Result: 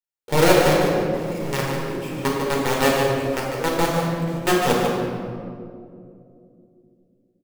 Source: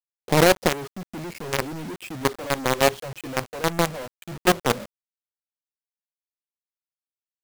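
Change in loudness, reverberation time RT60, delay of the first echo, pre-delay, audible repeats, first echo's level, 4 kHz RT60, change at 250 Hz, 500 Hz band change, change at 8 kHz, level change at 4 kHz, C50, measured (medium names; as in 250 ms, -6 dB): +2.0 dB, 2.5 s, 148 ms, 7 ms, 1, -6.5 dB, 1.2 s, +5.0 dB, +4.5 dB, +0.5 dB, +1.0 dB, -1.0 dB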